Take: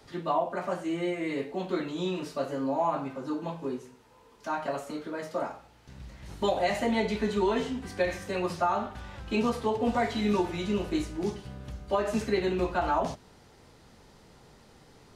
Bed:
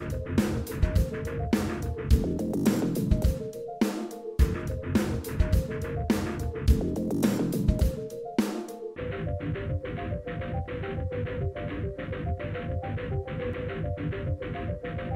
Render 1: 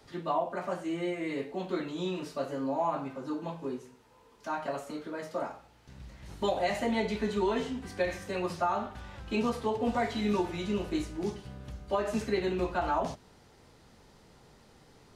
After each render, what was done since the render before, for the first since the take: gain -2.5 dB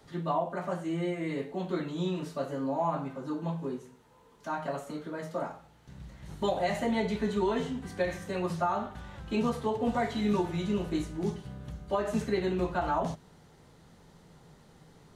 thirty-one-band EQ 160 Hz +10 dB, 2500 Hz -4 dB, 5000 Hz -5 dB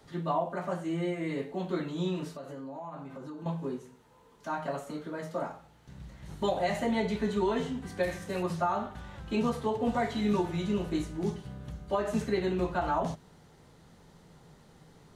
2.32–3.46 compressor 5:1, threshold -39 dBFS; 8.03–8.43 CVSD 64 kbps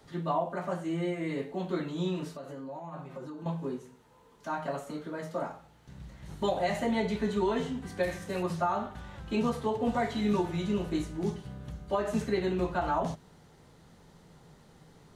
2.68–3.25 comb 5.5 ms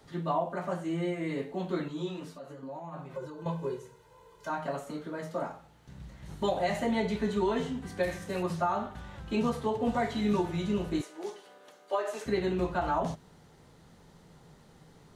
1.88–2.63 ensemble effect; 3.13–4.5 comb 2 ms, depth 80%; 11.01–12.26 HPF 400 Hz 24 dB/oct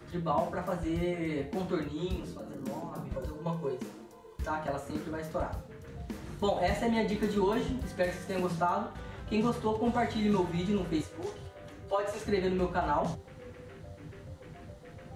add bed -15.5 dB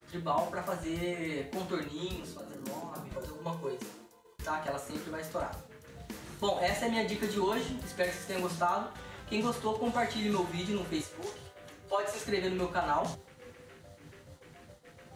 tilt +2 dB/oct; expander -47 dBFS

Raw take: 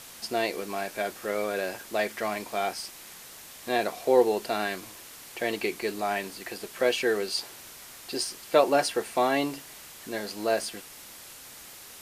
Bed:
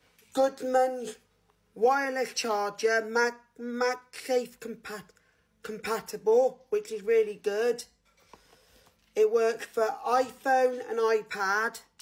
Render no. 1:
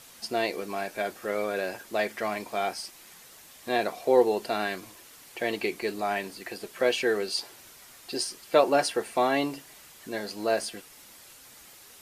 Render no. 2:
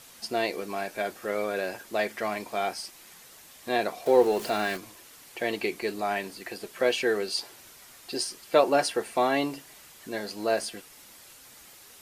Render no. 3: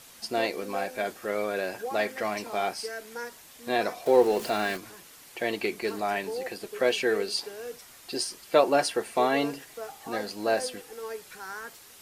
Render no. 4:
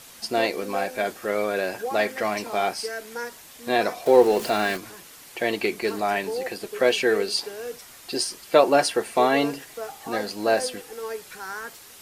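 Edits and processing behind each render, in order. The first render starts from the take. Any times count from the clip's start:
denoiser 6 dB, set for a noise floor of -47 dBFS
4.06–4.77 zero-crossing step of -35.5 dBFS
add bed -12 dB
gain +4.5 dB; limiter -3 dBFS, peak gain reduction 1 dB

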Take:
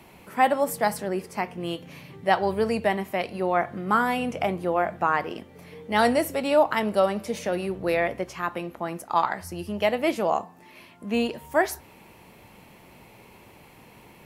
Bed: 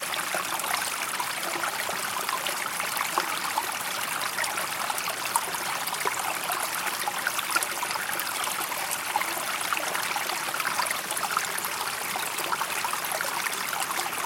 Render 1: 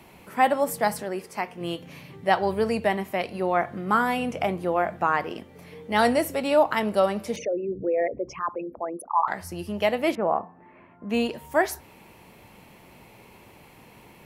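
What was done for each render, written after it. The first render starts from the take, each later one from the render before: 1.03–1.61 low shelf 250 Hz -9 dB; 7.36–9.28 formant sharpening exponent 3; 10.15–11.1 LPF 1800 Hz 24 dB/oct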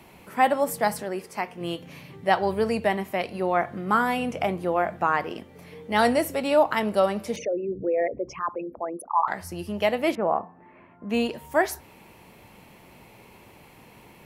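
nothing audible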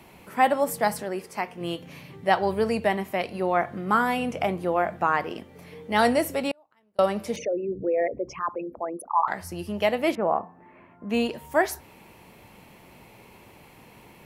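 6.51–6.99 flipped gate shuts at -19 dBFS, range -40 dB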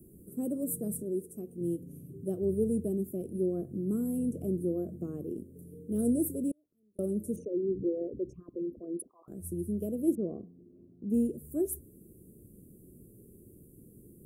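elliptic band-stop 380–9100 Hz, stop band 40 dB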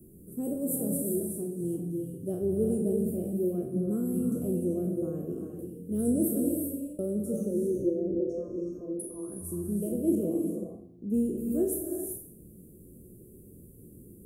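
spectral trails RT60 0.56 s; non-linear reverb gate 0.42 s rising, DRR 2 dB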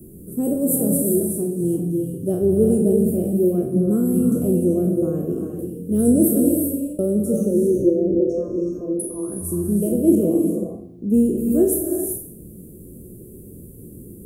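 gain +11 dB

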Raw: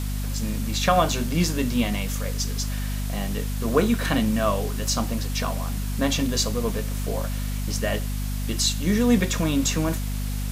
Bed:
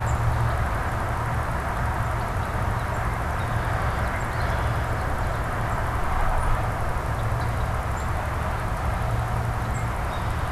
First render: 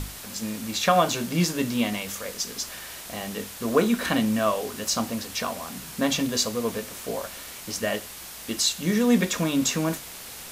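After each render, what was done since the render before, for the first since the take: notches 50/100/150/200/250/300 Hz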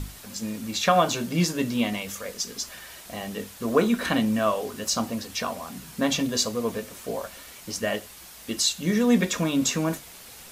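denoiser 6 dB, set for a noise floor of -40 dBFS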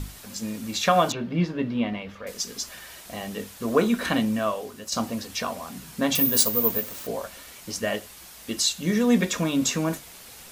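1.12–2.27 air absorption 350 m; 4.17–4.92 fade out, to -8.5 dB; 6.15–7.07 careless resampling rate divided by 3×, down none, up zero stuff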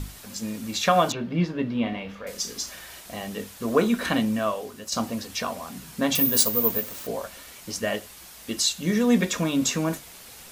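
1.79–3 flutter echo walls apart 6.1 m, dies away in 0.26 s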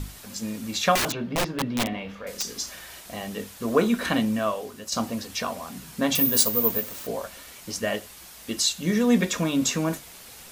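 0.95–2.46 wrapped overs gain 19 dB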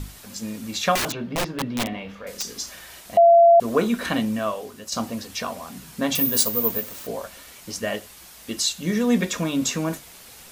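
3.17–3.6 bleep 681 Hz -9 dBFS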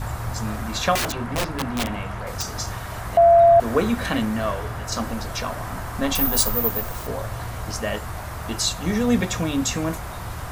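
add bed -6 dB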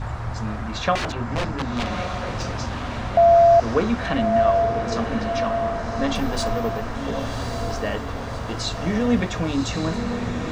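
air absorption 130 m; diffused feedback echo 1.128 s, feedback 51%, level -5.5 dB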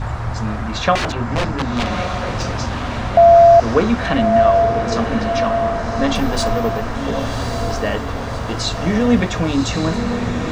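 gain +5.5 dB; limiter -2 dBFS, peak gain reduction 1 dB

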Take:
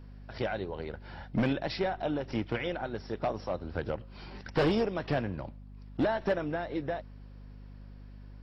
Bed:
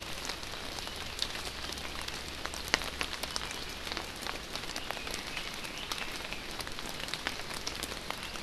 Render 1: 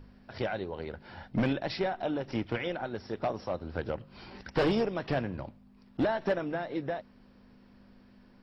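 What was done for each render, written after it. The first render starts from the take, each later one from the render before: de-hum 50 Hz, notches 3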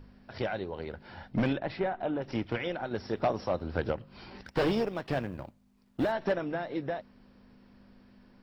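1.58–2.22 LPF 2400 Hz; 2.91–3.93 gain +3.5 dB; 4.46–6.12 G.711 law mismatch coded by A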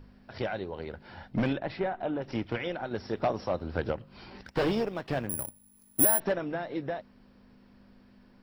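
5.29–6.2 careless resampling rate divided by 4×, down none, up zero stuff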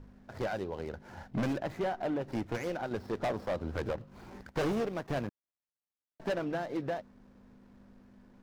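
median filter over 15 samples; hard clip -28 dBFS, distortion -10 dB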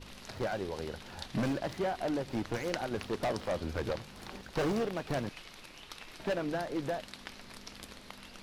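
add bed -11 dB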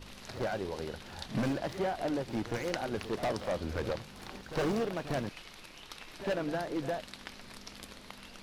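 reverse echo 59 ms -13 dB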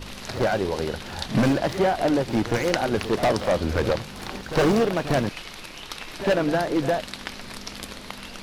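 gain +11.5 dB

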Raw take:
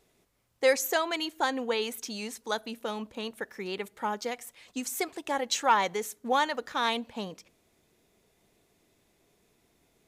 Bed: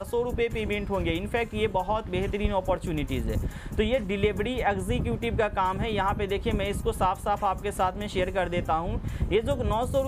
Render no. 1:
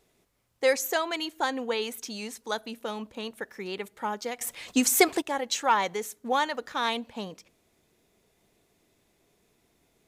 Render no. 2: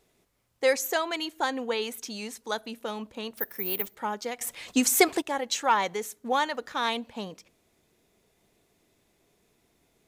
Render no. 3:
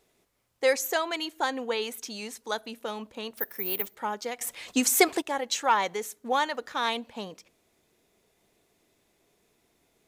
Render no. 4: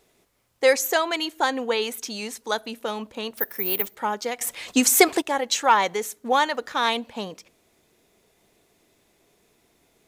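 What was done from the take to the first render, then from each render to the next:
4.41–5.22 gain +11.5 dB
3.37–3.95 careless resampling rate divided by 3×, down none, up zero stuff
tone controls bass -4 dB, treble 0 dB
gain +5.5 dB; limiter -3 dBFS, peak gain reduction 1.5 dB

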